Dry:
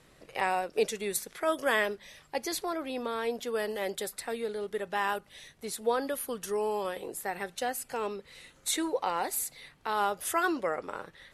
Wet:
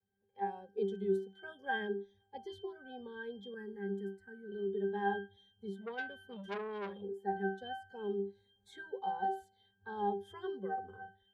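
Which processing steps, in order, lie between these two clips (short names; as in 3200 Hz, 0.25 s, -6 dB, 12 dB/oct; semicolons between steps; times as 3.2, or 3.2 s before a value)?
AGC gain up to 9.5 dB; octave resonator G, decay 0.42 s; vibrato 0.62 Hz 26 cents; spectral noise reduction 12 dB; 3.54–4.52 fixed phaser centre 1500 Hz, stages 4; 5.81–7.02 core saturation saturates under 1700 Hz; gain +3 dB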